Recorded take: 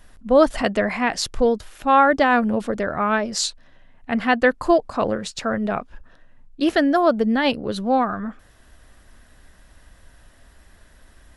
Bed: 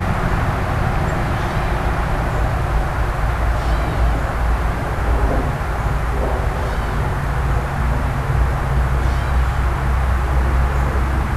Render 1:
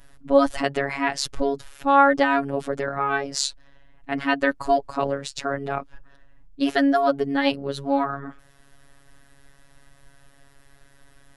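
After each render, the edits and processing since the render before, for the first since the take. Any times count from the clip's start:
phases set to zero 139 Hz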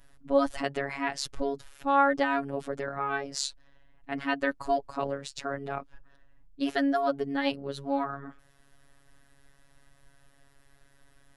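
level −7 dB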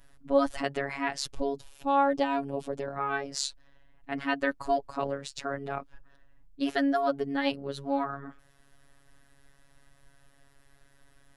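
0:01.32–0:02.96: flat-topped bell 1,600 Hz −8 dB 1 octave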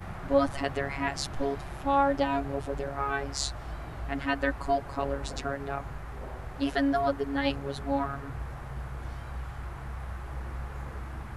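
mix in bed −20.5 dB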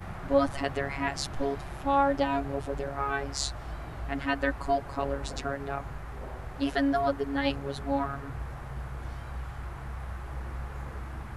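no processing that can be heard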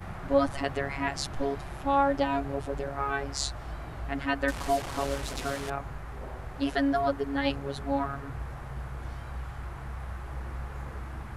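0:04.48–0:05.70: linear delta modulator 64 kbit/s, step −30.5 dBFS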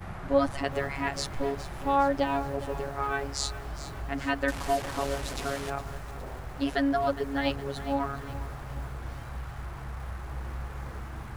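feedback echo at a low word length 412 ms, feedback 55%, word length 7 bits, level −13.5 dB

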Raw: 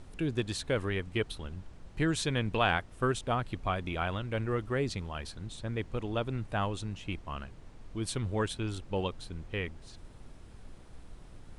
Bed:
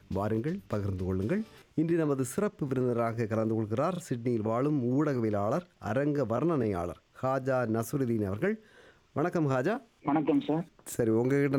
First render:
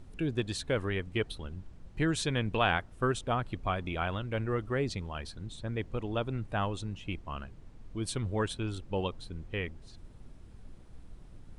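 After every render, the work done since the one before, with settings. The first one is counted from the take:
broadband denoise 6 dB, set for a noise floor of −51 dBFS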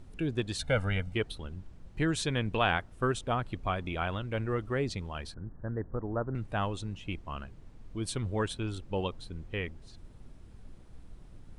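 0:00.59–0:01.14: comb filter 1.4 ms, depth 99%
0:05.34–0:06.35: Butterworth low-pass 1,800 Hz 96 dB per octave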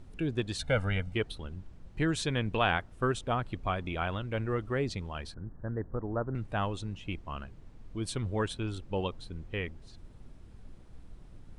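high-shelf EQ 9,700 Hz −5 dB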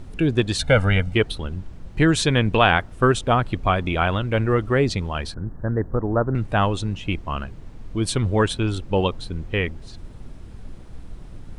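level +12 dB
brickwall limiter −3 dBFS, peak gain reduction 1.5 dB

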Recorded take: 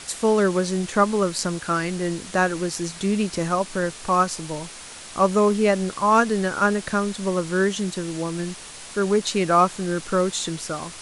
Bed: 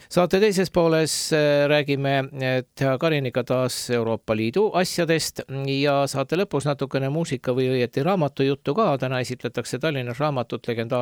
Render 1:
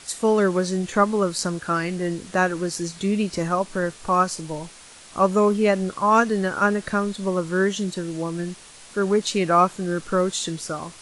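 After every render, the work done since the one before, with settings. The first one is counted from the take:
noise reduction from a noise print 6 dB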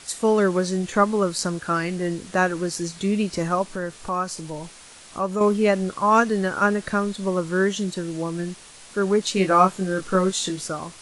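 0:03.63–0:05.41: downward compressor 1.5 to 1, threshold −31 dBFS
0:09.35–0:10.68: double-tracking delay 21 ms −4.5 dB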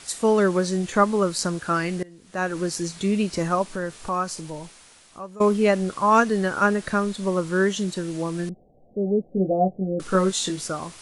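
0:02.03–0:02.59: fade in quadratic, from −22.5 dB
0:04.29–0:05.40: fade out linear, to −16.5 dB
0:08.49–0:10.00: Chebyshev low-pass with heavy ripple 760 Hz, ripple 3 dB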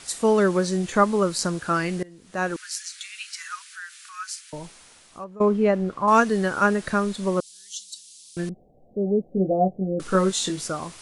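0:02.56–0:04.53: Butterworth high-pass 1,400 Hz 48 dB per octave
0:05.24–0:06.08: low-pass filter 1,200 Hz 6 dB per octave
0:07.40–0:08.37: inverse Chebyshev high-pass filter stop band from 1,500 Hz, stop band 50 dB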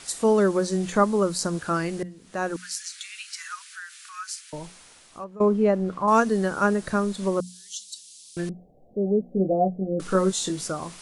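mains-hum notches 60/120/180/240 Hz
dynamic equaliser 2,400 Hz, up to −6 dB, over −37 dBFS, Q 0.71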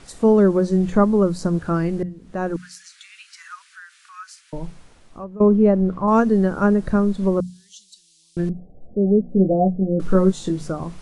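spectral tilt −3.5 dB per octave
mains-hum notches 50/100/150 Hz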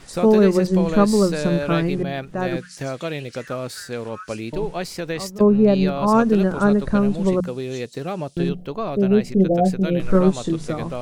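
mix in bed −6.5 dB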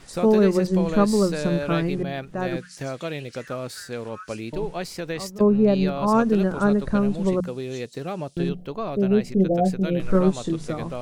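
level −3 dB

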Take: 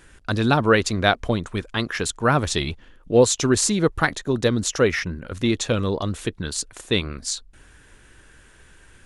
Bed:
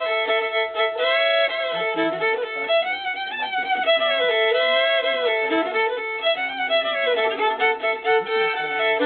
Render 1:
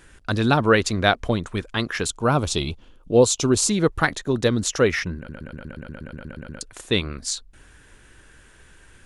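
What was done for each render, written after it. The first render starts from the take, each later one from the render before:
0:02.07–0:03.69: parametric band 1,800 Hz −14 dB 0.41 octaves
0:05.17: stutter in place 0.12 s, 12 plays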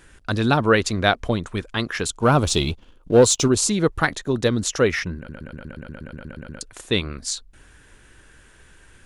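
0:02.22–0:03.48: leveller curve on the samples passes 1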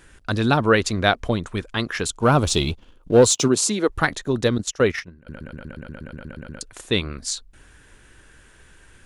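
0:03.32–0:03.88: high-pass filter 91 Hz → 270 Hz 24 dB per octave
0:04.58–0:05.27: noise gate −25 dBFS, range −16 dB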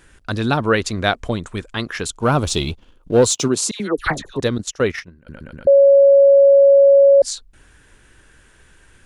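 0:00.97–0:01.74: parametric band 7,700 Hz +5.5 dB 0.4 octaves
0:03.71–0:04.40: all-pass dispersion lows, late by 90 ms, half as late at 1,400 Hz
0:05.67–0:07.22: beep over 556 Hz −6.5 dBFS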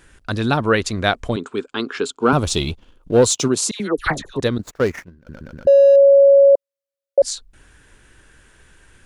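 0:01.36–0:02.33: loudspeaker in its box 250–7,500 Hz, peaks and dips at 260 Hz +9 dB, 410 Hz +10 dB, 610 Hz −7 dB, 1,400 Hz +5 dB, 1,900 Hz −8 dB, 5,900 Hz −8 dB
0:04.60–0:05.96: running median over 15 samples
0:06.55–0:07.18: Butterworth high-pass 990 Hz 96 dB per octave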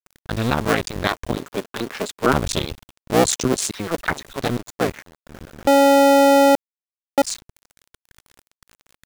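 sub-harmonics by changed cycles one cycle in 2, muted
bit reduction 7 bits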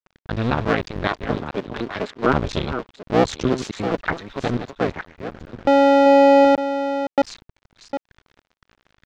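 delay that plays each chunk backwards 505 ms, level −9.5 dB
high-frequency loss of the air 200 metres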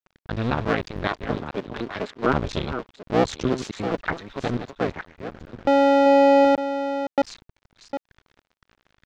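level −3 dB

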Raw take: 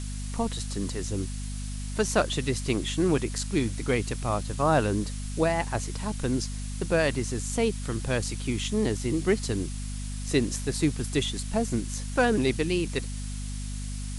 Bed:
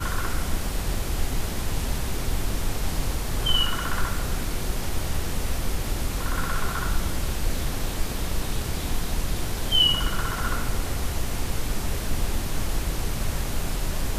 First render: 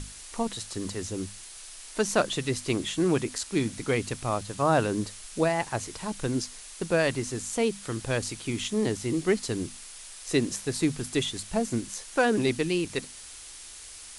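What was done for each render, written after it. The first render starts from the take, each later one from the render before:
mains-hum notches 50/100/150/200/250 Hz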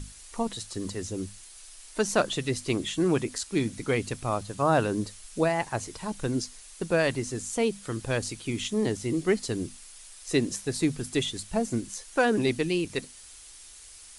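broadband denoise 6 dB, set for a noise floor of −45 dBFS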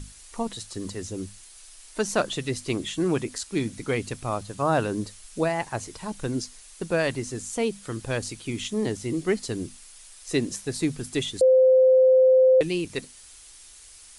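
0:11.41–0:12.61: beep over 518 Hz −13 dBFS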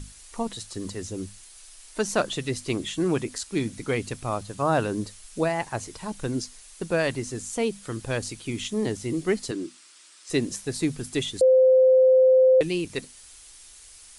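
0:09.51–0:10.30: loudspeaker in its box 290–8,300 Hz, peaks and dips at 330 Hz +10 dB, 460 Hz −6 dB, 750 Hz −7 dB, 1,300 Hz +4 dB, 6,500 Hz −4 dB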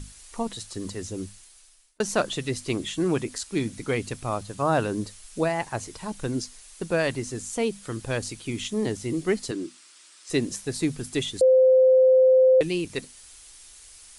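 0:01.22–0:02.00: fade out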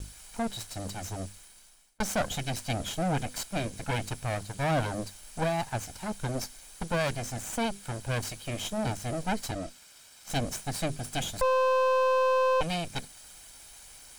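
lower of the sound and its delayed copy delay 1.3 ms
soft clipping −20.5 dBFS, distortion −11 dB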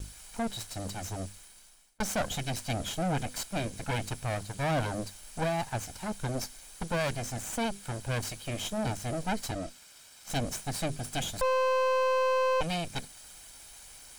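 soft clipping −22 dBFS, distortion −20 dB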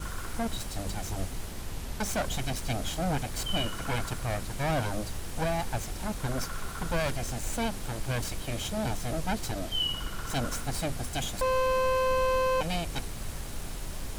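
mix in bed −10.5 dB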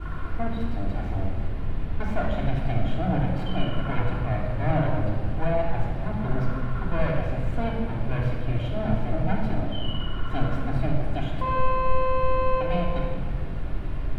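high-frequency loss of the air 500 metres
rectangular room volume 2,500 cubic metres, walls mixed, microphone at 3.2 metres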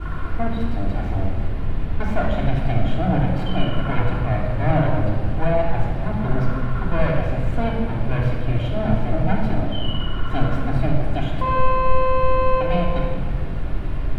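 level +5 dB

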